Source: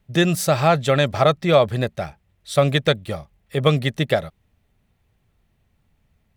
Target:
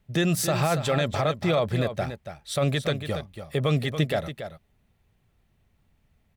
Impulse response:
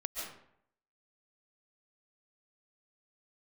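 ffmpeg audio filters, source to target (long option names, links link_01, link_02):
-filter_complex "[0:a]alimiter=limit=-13dB:level=0:latency=1:release=34,asplit=2[link_01][link_02];[link_02]aecho=0:1:282:0.335[link_03];[link_01][link_03]amix=inputs=2:normalize=0,volume=-2dB"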